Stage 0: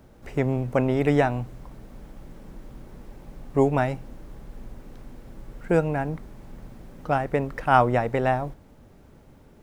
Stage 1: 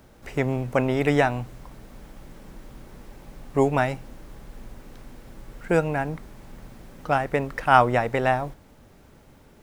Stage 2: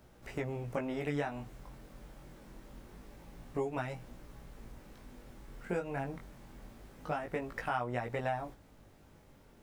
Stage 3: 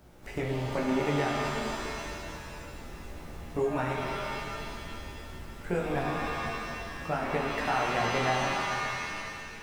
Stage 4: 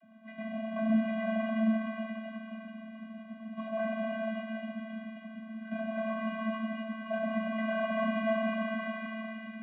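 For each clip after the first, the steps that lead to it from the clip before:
tilt shelf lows -3.5 dB, about 930 Hz; trim +2 dB
compression 4:1, threshold -25 dBFS, peak gain reduction 13 dB; chorus 0.25 Hz, delay 16.5 ms, depth 5.9 ms; trim -4.5 dB
pitch-shifted reverb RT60 2.4 s, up +7 st, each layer -2 dB, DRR -0.5 dB; trim +3 dB
CVSD coder 16 kbps; vocoder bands 32, square 221 Hz

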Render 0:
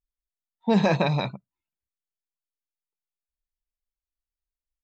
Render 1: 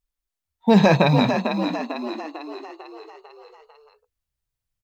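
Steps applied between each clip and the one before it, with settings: short-mantissa float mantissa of 6-bit; on a send: frequency-shifting echo 448 ms, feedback 52%, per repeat +49 Hz, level -7 dB; on the sum: trim +6 dB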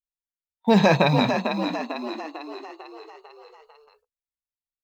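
gate with hold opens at -45 dBFS; bass shelf 430 Hz -4 dB

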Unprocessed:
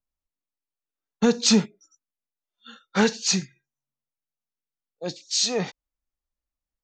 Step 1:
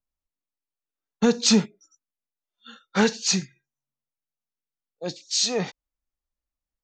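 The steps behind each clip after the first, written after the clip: no audible change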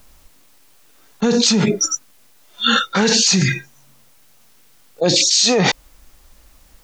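level flattener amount 100%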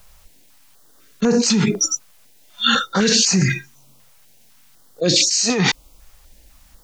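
step-sequenced notch 4 Hz 290–3500 Hz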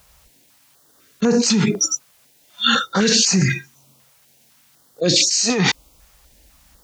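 high-pass 47 Hz

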